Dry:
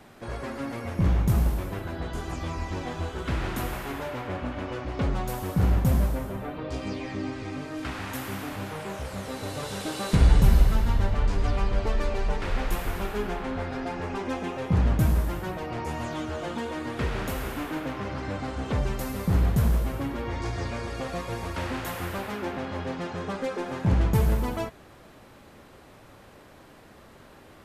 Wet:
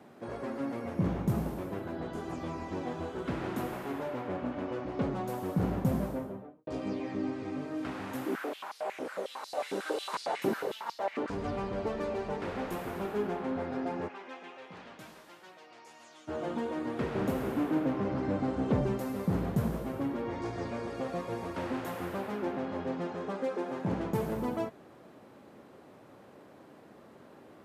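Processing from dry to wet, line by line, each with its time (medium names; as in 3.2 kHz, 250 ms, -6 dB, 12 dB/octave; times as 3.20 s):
6.09–6.67 s: studio fade out
8.26–11.30 s: step-sequenced high-pass 11 Hz 310–4700 Hz
14.07–16.27 s: band-pass filter 2.3 kHz -> 6.9 kHz, Q 0.91
17.15–18.98 s: bass shelf 490 Hz +6.5 dB
23.13–24.36 s: bass shelf 150 Hz -9 dB
whole clip: high-pass 190 Hz 12 dB/octave; tilt shelf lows +6 dB, about 1.1 kHz; trim -5 dB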